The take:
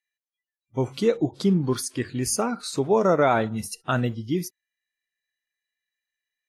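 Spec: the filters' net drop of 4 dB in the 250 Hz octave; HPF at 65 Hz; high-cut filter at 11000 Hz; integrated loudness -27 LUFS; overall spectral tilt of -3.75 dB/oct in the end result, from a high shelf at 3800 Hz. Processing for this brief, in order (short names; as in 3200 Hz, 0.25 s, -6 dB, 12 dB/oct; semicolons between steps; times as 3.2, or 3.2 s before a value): HPF 65 Hz; LPF 11000 Hz; bell 250 Hz -5.5 dB; high shelf 3800 Hz +8.5 dB; gain -2.5 dB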